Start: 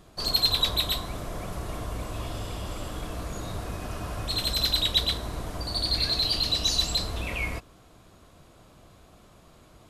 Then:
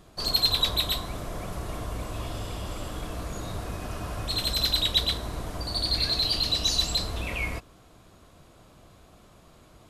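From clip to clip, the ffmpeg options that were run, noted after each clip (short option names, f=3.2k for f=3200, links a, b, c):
-af anull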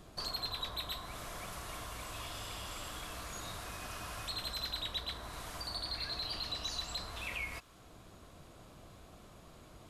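-filter_complex "[0:a]acrossover=split=890|1900[a][b][c];[a]acompressor=threshold=-47dB:ratio=4[d];[b]acompressor=threshold=-45dB:ratio=4[e];[c]acompressor=threshold=-40dB:ratio=4[f];[d][e][f]amix=inputs=3:normalize=0,volume=-1.5dB"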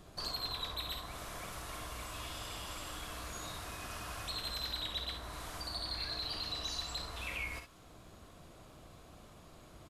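-af "aecho=1:1:52|65:0.335|0.355,volume=-1dB"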